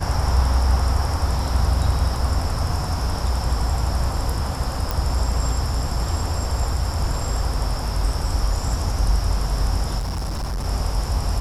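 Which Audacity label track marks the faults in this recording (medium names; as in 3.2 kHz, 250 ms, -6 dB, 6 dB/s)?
4.910000	4.910000	pop
9.980000	10.660000	clipped -22.5 dBFS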